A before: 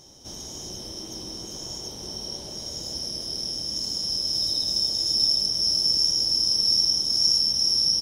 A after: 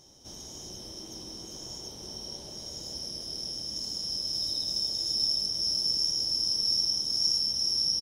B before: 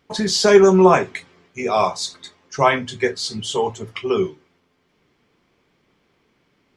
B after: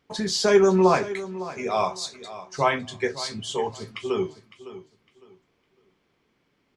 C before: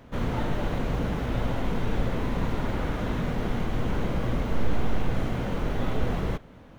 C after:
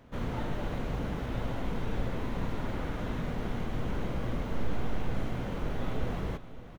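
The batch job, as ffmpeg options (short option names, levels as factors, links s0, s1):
-af "aecho=1:1:557|1114|1671:0.178|0.0427|0.0102,volume=0.501"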